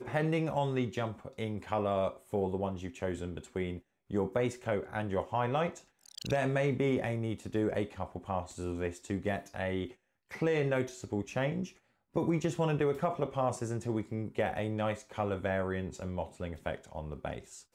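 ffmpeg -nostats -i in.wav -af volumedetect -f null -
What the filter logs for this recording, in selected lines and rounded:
mean_volume: -33.9 dB
max_volume: -17.3 dB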